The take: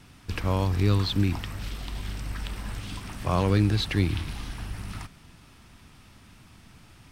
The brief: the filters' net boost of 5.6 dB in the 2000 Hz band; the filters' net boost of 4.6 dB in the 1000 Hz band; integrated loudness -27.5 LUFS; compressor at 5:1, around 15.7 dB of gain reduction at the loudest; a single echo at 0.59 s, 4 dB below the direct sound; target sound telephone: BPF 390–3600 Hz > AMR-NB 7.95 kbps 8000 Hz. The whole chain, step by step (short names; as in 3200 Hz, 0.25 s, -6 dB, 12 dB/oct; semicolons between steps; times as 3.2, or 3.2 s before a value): bell 1000 Hz +4 dB; bell 2000 Hz +6.5 dB; compressor 5:1, threshold -35 dBFS; BPF 390–3600 Hz; echo 0.59 s -4 dB; gain +18 dB; AMR-NB 7.95 kbps 8000 Hz